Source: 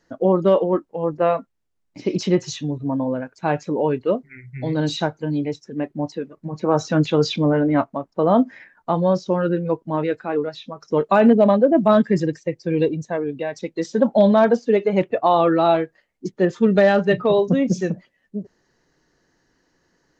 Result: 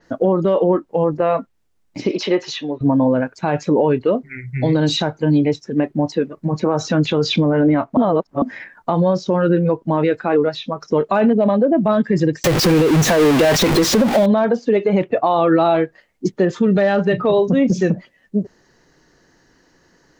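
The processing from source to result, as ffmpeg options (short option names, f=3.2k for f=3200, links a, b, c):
-filter_complex "[0:a]asettb=1/sr,asplit=3[a][b][c];[a]atrim=end=2.114[d];[b]atrim=start=2.11:end=2.81,asetpts=PTS-STARTPTS,afade=t=in:d=0.004:c=qsin,afade=t=out:st=0.696:d=0.004:c=qsin,acrossover=split=340 4900:gain=0.0631 1 0.0891[e][f][g];[e][f][g]amix=inputs=3:normalize=0[h];[c]atrim=start=2.806[i];[d][h]acrossfade=d=0.004:c1=hsin:c2=qsin[j];[j][i]acrossfade=d=0.004:c1=qsin:c2=hsin,asettb=1/sr,asplit=3[k][l][m];[k]atrim=end=12.444[n];[l]atrim=start=12.44:end=14.26,asetpts=PTS-STARTPTS,afade=t=in:d=0.004:c=qsin,afade=t=out:st=1.816:d=0.004:c=qsin,aeval=exprs='val(0)+0.5*0.119*sgn(val(0))':c=same[o];[m]atrim=start=14.256[p];[n][o]acrossfade=d=0.004:c1=hsin:c2=qsin[q];[q][p]acrossfade=d=0.004:c1=qsin:c2=hsin,asplit=3[r][s][t];[r]atrim=end=7.972[u];[s]atrim=start=7.968:end=8.422,asetpts=PTS-STARTPTS,areverse[v];[t]atrim=start=8.418[w];[u][v]acrossfade=d=0.004:c1=hsin:c2=hsin[x];[x][w]acrossfade=d=0.004:c1=hsin:c2=hsin,acompressor=threshold=-18dB:ratio=6,alimiter=level_in=15.5dB:limit=-1dB:release=50:level=0:latency=1,adynamicequalizer=threshold=0.0178:dfrequency=5100:dqfactor=0.7:tfrequency=5100:tqfactor=0.7:attack=5:release=100:ratio=0.375:range=3:mode=cutabove:tftype=highshelf,volume=-6dB"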